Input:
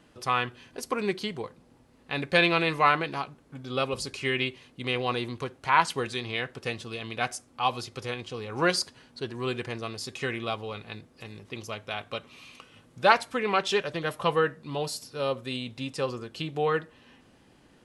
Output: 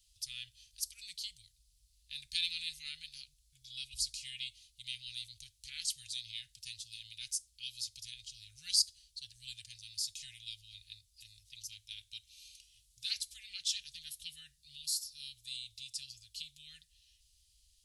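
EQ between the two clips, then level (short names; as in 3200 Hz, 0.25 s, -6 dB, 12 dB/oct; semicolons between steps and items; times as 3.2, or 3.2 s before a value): inverse Chebyshev band-stop 210–1100 Hz, stop band 70 dB; bell 190 Hz +10.5 dB 0.97 oct; high shelf 10000 Hz +4 dB; +1.0 dB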